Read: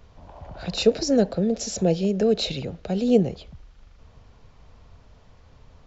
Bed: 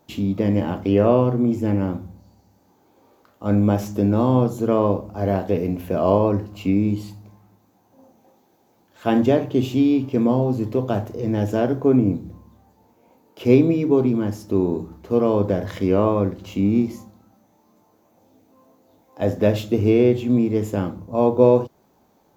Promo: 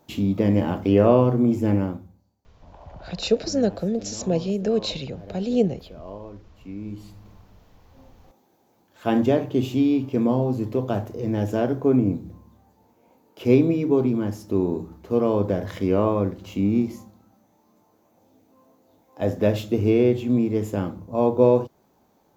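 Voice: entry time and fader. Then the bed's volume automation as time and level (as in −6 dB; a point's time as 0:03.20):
2.45 s, −2.0 dB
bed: 0:01.77 0 dB
0:02.41 −21 dB
0:06.57 −21 dB
0:07.32 −2.5 dB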